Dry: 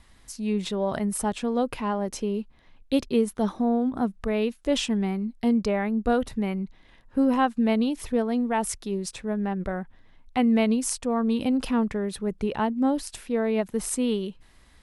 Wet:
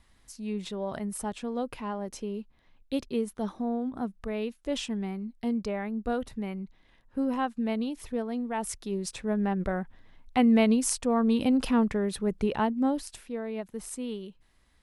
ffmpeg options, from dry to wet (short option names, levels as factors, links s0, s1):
-af "afade=t=in:st=8.52:d=0.84:silence=0.446684,afade=t=out:st=12.44:d=0.97:silence=0.316228"